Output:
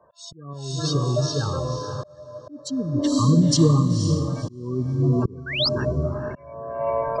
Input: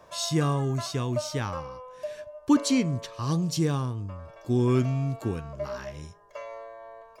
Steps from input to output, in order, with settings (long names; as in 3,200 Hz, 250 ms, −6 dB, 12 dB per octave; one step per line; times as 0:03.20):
camcorder AGC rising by 9.3 dB per second
gate on every frequency bin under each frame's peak −15 dB strong
0:00.53–0:01.65: octave-band graphic EQ 250/1,000/2,000/8,000 Hz −9/−7/+6/−4 dB
feedback delay with all-pass diffusion 510 ms, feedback 45%, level −5 dB
0:05.46–0:05.69: sound drawn into the spectrogram rise 1,400–5,400 Hz −25 dBFS
volume swells 710 ms
multiband upward and downward expander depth 40%
level +6.5 dB